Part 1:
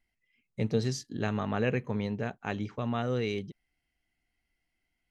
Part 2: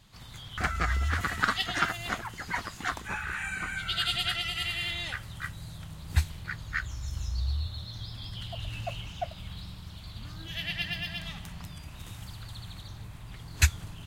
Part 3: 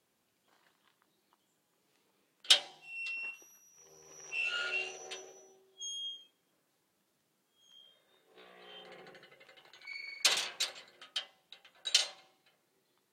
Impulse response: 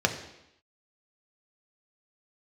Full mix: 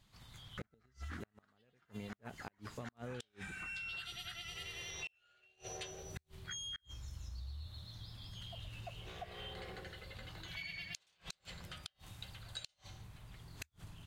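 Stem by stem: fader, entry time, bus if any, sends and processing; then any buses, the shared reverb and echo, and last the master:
-5.5 dB, 0.00 s, no send, treble shelf 2.7 kHz -3 dB
-10.5 dB, 0.00 s, no send, none
-9.0 dB, 0.70 s, no send, de-hum 219.2 Hz, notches 38; level rider gain up to 14 dB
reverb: none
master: inverted gate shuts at -24 dBFS, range -39 dB; compression 5:1, threshold -43 dBFS, peak gain reduction 11.5 dB

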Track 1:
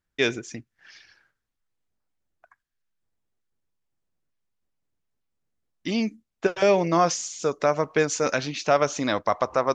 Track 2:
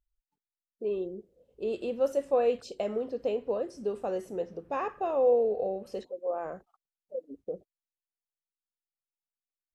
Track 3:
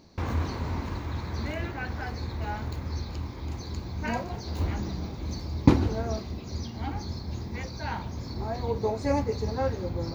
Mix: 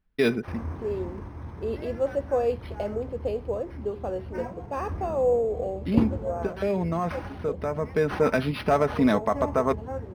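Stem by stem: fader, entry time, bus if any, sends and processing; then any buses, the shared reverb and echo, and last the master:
-1.5 dB, 0.00 s, no send, bass shelf 370 Hz +10.5 dB; comb 4.6 ms, depth 49%; peak limiter -9.5 dBFS, peak gain reduction 6.5 dB; auto duck -7 dB, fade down 0.40 s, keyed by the second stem
+1.0 dB, 0.00 s, no send, none
-5.5 dB, 0.30 s, no send, peaking EQ 4.7 kHz -13 dB 1.6 oct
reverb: none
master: decimation joined by straight lines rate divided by 6×

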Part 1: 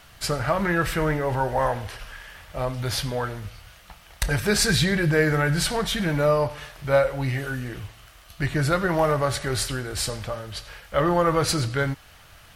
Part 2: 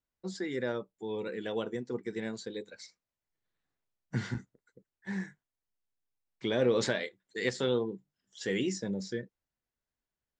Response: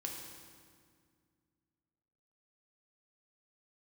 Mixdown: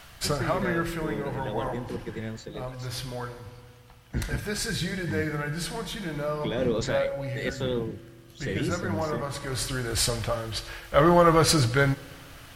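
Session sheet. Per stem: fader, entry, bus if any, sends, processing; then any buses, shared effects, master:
+1.5 dB, 0.00 s, send -16 dB, auto duck -15 dB, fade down 1.05 s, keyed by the second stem
-1.0 dB, 0.00 s, send -20 dB, octave divider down 1 oct, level +1 dB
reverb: on, RT60 2.0 s, pre-delay 3 ms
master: none

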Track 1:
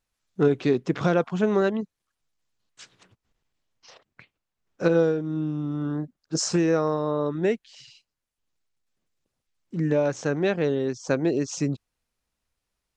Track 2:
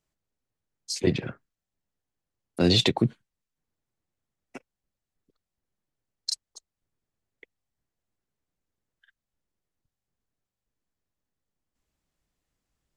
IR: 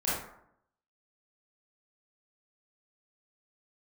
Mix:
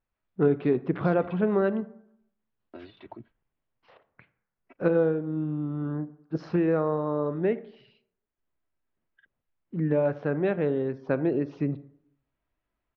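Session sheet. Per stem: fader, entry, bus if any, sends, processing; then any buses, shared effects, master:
-2.5 dB, 0.00 s, send -22.5 dB, none
-3.5 dB, 0.15 s, no send, bass shelf 480 Hz -10 dB; comb 3.1 ms, depth 88%; compressor with a negative ratio -28 dBFS, ratio -1; auto duck -11 dB, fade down 0.30 s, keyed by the first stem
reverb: on, RT60 0.75 s, pre-delay 22 ms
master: Gaussian low-pass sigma 3.3 samples

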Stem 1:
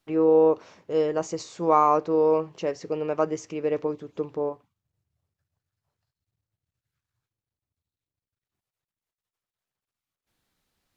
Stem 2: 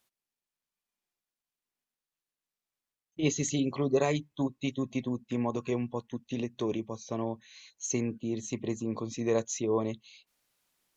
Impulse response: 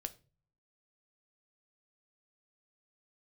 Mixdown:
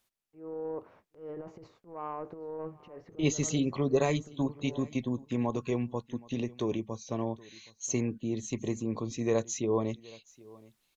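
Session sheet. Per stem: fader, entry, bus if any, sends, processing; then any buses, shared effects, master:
-19.0 dB, 0.25 s, no send, echo send -22 dB, low-pass 1.6 kHz 12 dB/octave; gate -47 dBFS, range -31 dB; transient shaper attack -9 dB, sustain +12 dB
-0.5 dB, 0.00 s, no send, echo send -23 dB, none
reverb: none
echo: delay 772 ms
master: bass shelf 66 Hz +10.5 dB

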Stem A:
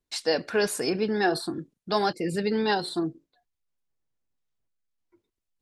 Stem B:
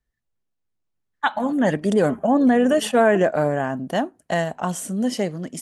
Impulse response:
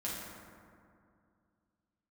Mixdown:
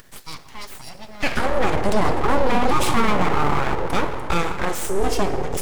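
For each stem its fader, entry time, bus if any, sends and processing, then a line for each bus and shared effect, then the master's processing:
-9.5 dB, 0.00 s, send -10 dB, treble shelf 3.6 kHz +5.5 dB
+0.5 dB, 0.00 s, send -6 dB, bass shelf 450 Hz +8 dB; upward compressor, threshold -17 dBFS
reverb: on, RT60 2.3 s, pre-delay 5 ms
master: high-pass 330 Hz 6 dB/octave; full-wave rectifier; peak limiter -7 dBFS, peak gain reduction 8 dB

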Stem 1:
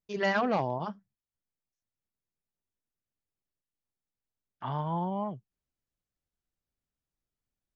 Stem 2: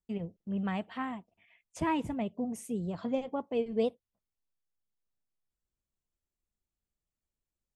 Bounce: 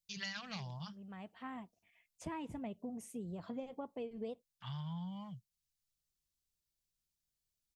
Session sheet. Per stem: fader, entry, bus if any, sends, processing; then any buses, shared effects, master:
-5.0 dB, 0.00 s, no send, FFT filter 180 Hz 0 dB, 320 Hz -29 dB, 4.3 kHz +11 dB
-7.0 dB, 0.45 s, no send, auto duck -14 dB, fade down 0.25 s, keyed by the first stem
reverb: none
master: compression 10:1, threshold -39 dBFS, peak gain reduction 8.5 dB

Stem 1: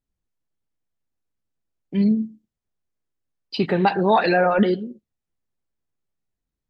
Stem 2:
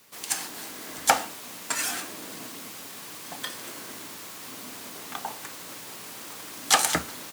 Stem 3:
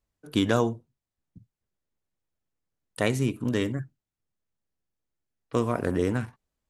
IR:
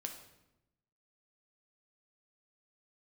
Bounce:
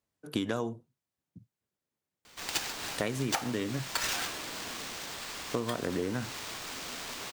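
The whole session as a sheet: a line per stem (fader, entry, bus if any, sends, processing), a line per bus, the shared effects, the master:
mute
+1.0 dB, 2.25 s, no send, bass shelf 400 Hz -9.5 dB; sample-rate reducer 12 kHz, jitter 0%
+0.5 dB, 0.00 s, no send, high-pass 120 Hz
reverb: none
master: compression 6:1, threshold -28 dBFS, peak gain reduction 14 dB

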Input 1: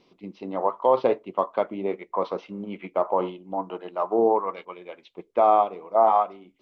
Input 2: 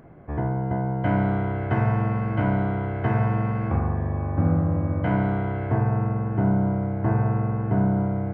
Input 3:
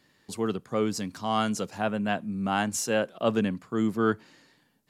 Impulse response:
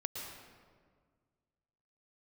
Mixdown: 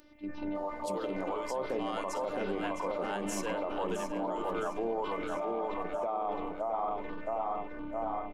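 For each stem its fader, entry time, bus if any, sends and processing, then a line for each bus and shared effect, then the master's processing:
-1.5 dB, 0.00 s, bus A, send -20 dB, echo send -5 dB, bass shelf 180 Hz +6.5 dB
-6.5 dB, 0.00 s, bus A, no send, no echo send, resonant high shelf 1.7 kHz +12.5 dB, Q 1.5; saturation -22.5 dBFS, distortion -11 dB; stepped phaser 8.6 Hz 750–2200 Hz
0.0 dB, 0.55 s, no bus, no send, echo send -17.5 dB, inverse Chebyshev high-pass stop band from 180 Hz, stop band 40 dB; auto duck -8 dB, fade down 1.50 s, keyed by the first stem
bus A: 0.0 dB, robot voice 297 Hz; peak limiter -25 dBFS, peak gain reduction 14.5 dB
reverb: on, RT60 1.8 s, pre-delay 105 ms
echo: feedback delay 662 ms, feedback 51%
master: peak limiter -25 dBFS, peak gain reduction 13 dB

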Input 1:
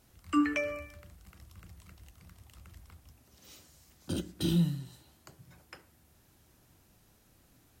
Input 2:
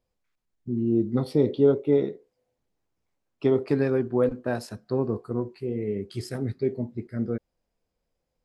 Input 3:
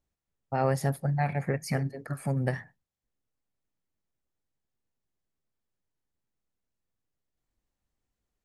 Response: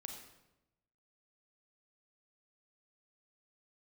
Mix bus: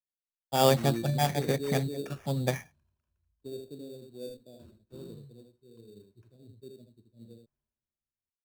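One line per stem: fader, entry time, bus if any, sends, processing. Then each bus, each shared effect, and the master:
-15.5 dB, 0.50 s, no send, echo send -13 dB, rippled EQ curve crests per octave 1.4, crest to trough 15 dB
-16.0 dB, 0.00 s, no send, echo send -4 dB, Chebyshev band-stop 600–6500 Hz, order 3
+1.0 dB, 0.00 s, no send, no echo send, bass shelf 120 Hz -11 dB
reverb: none
echo: delay 78 ms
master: treble shelf 2.8 kHz -12 dB; sample-rate reducer 4.1 kHz, jitter 0%; three bands expanded up and down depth 70%

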